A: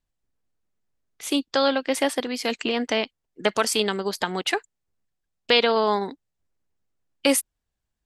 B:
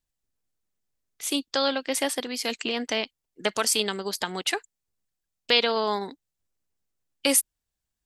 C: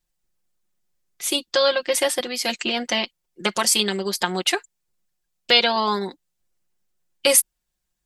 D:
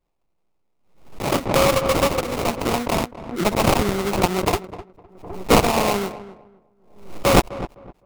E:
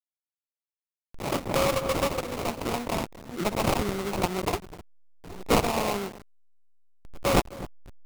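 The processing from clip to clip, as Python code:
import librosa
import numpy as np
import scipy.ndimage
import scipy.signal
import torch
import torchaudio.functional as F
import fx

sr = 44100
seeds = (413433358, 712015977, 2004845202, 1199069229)

y1 = fx.high_shelf(x, sr, hz=3600.0, db=9.5)
y1 = F.gain(torch.from_numpy(y1), -5.0).numpy()
y2 = y1 + 0.83 * np.pad(y1, (int(5.6 * sr / 1000.0), 0))[:len(y1)]
y2 = F.gain(torch.from_numpy(y2), 3.0).numpy()
y3 = fx.sample_hold(y2, sr, seeds[0], rate_hz=1700.0, jitter_pct=20)
y3 = fx.echo_filtered(y3, sr, ms=255, feedback_pct=24, hz=1400.0, wet_db=-14)
y3 = fx.pre_swell(y3, sr, db_per_s=92.0)
y3 = F.gain(torch.from_numpy(y3), 1.5).numpy()
y4 = fx.delta_hold(y3, sr, step_db=-30.5)
y4 = F.gain(torch.from_numpy(y4), -7.5).numpy()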